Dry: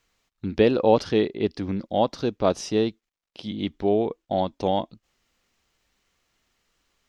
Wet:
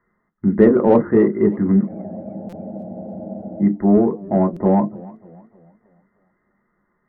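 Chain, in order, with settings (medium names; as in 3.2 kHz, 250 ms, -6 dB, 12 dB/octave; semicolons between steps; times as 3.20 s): brick-wall FIR low-pass 2.1 kHz; reverberation RT60 0.15 s, pre-delay 3 ms, DRR 3 dB; in parallel at -4 dB: saturation -8 dBFS, distortion -11 dB; on the sum: bass shelf 290 Hz +6.5 dB; spectral freeze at 1.90 s, 1.70 s; buffer glitch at 2.49/4.53 s, samples 256, times 5; modulated delay 301 ms, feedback 43%, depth 129 cents, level -21.5 dB; trim -9 dB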